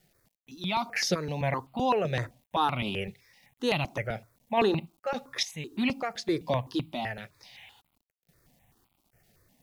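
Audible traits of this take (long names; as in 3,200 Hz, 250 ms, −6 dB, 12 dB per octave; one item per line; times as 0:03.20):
sample-and-hold tremolo, depth 75%
a quantiser's noise floor 12 bits, dither none
notches that jump at a steady rate 7.8 Hz 280–1,700 Hz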